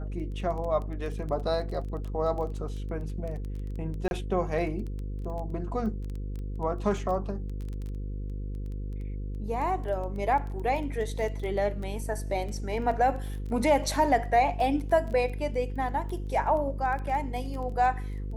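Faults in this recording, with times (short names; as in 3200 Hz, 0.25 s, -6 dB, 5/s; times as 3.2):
buzz 50 Hz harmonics 10 -34 dBFS
crackle 12/s -34 dBFS
4.08–4.11 gap 31 ms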